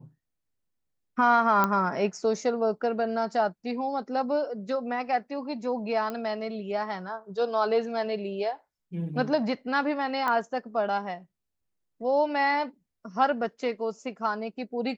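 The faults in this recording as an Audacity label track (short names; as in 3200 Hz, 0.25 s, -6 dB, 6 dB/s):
1.640000	1.640000	pop -10 dBFS
6.100000	6.100000	pop -20 dBFS
10.280000	10.280000	pop -16 dBFS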